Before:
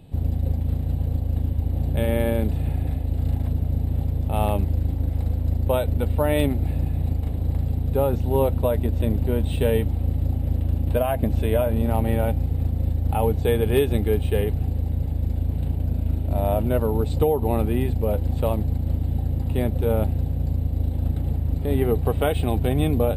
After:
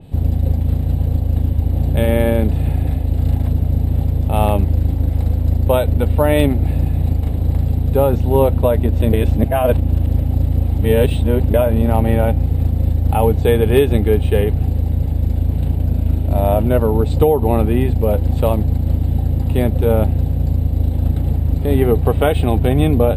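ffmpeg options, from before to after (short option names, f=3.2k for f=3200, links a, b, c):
-filter_complex "[0:a]asplit=3[a][b][c];[a]atrim=end=9.132[d];[b]atrim=start=9.128:end=11.542,asetpts=PTS-STARTPTS,areverse[e];[c]atrim=start=11.538[f];[d][e]acrossfade=d=0.004:c1=hsin:c2=hsin[g];[g][f]acrossfade=d=0.004:c1=hsin:c2=hsin,adynamicequalizer=threshold=0.00708:dfrequency=3400:dqfactor=0.7:tfrequency=3400:tqfactor=0.7:attack=5:release=100:ratio=0.375:range=2.5:mode=cutabove:tftype=highshelf,volume=7dB"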